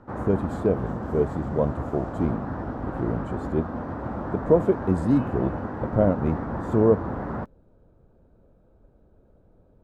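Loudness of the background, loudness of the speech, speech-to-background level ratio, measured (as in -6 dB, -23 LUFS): -32.0 LUFS, -25.5 LUFS, 6.5 dB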